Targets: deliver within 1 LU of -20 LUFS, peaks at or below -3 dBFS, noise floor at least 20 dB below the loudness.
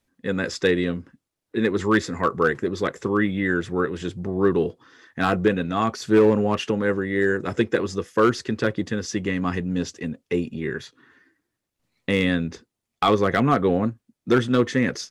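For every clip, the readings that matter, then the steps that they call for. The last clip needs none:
clipped 0.5%; flat tops at -10.0 dBFS; loudness -23.0 LUFS; peak -10.0 dBFS; loudness target -20.0 LUFS
-> clip repair -10 dBFS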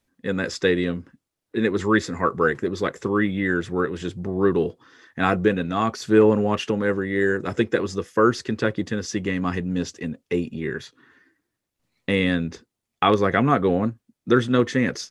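clipped 0.0%; loudness -23.0 LUFS; peak -3.0 dBFS; loudness target -20.0 LUFS
-> gain +3 dB; limiter -3 dBFS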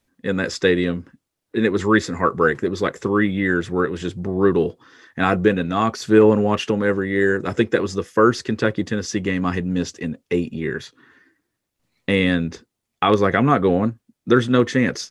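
loudness -20.0 LUFS; peak -3.0 dBFS; noise floor -80 dBFS

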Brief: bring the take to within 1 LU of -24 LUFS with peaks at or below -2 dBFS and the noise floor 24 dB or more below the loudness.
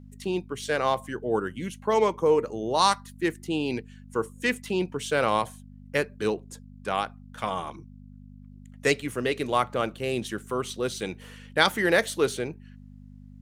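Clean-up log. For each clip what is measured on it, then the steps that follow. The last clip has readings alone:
hum 50 Hz; harmonics up to 250 Hz; hum level -44 dBFS; loudness -27.5 LUFS; peak -5.0 dBFS; loudness target -24.0 LUFS
-> de-hum 50 Hz, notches 5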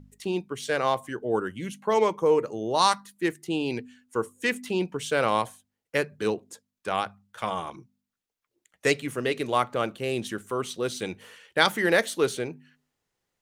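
hum none; loudness -27.5 LUFS; peak -4.5 dBFS; loudness target -24.0 LUFS
-> gain +3.5 dB; limiter -2 dBFS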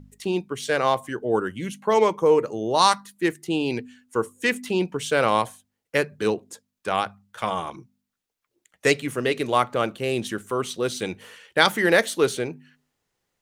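loudness -24.0 LUFS; peak -2.0 dBFS; noise floor -81 dBFS

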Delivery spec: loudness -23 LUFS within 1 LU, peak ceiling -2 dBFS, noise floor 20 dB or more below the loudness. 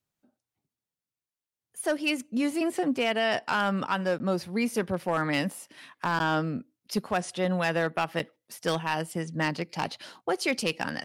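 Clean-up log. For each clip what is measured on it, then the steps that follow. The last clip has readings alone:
clipped 0.4%; flat tops at -18.0 dBFS; loudness -29.0 LUFS; peak -18.0 dBFS; loudness target -23.0 LUFS
-> clip repair -18 dBFS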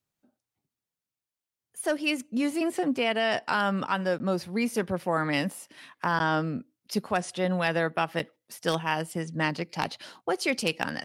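clipped 0.0%; loudness -28.5 LUFS; peak -9.0 dBFS; loudness target -23.0 LUFS
-> gain +5.5 dB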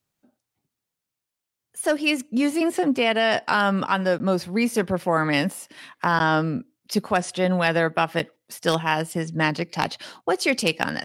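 loudness -23.0 LUFS; peak -3.5 dBFS; noise floor -85 dBFS

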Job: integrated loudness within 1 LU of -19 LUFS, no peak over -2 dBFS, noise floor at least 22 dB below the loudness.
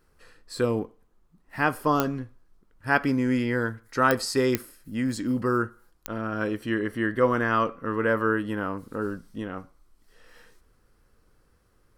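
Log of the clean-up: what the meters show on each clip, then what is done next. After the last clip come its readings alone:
clicks 4; loudness -26.5 LUFS; peak -7.0 dBFS; loudness target -19.0 LUFS
-> de-click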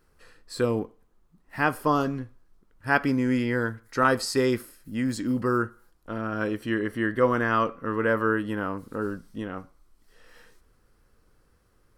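clicks 0; loudness -26.5 LUFS; peak -7.0 dBFS; loudness target -19.0 LUFS
-> gain +7.5 dB; limiter -2 dBFS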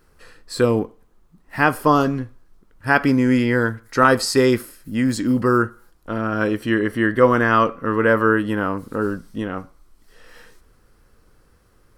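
loudness -19.5 LUFS; peak -2.0 dBFS; noise floor -56 dBFS

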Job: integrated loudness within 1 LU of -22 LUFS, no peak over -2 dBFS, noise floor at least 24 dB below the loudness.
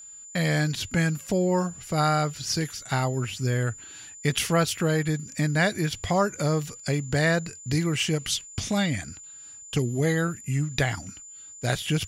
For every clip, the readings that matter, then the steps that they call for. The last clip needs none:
steady tone 7100 Hz; tone level -42 dBFS; loudness -26.0 LUFS; peak -9.5 dBFS; loudness target -22.0 LUFS
-> notch 7100 Hz, Q 30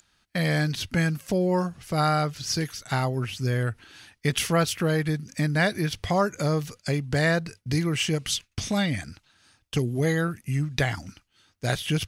steady tone none; loudness -26.5 LUFS; peak -9.5 dBFS; loudness target -22.0 LUFS
-> gain +4.5 dB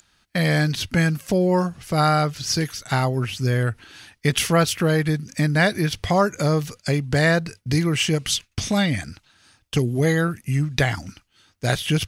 loudness -22.0 LUFS; peak -5.0 dBFS; noise floor -66 dBFS

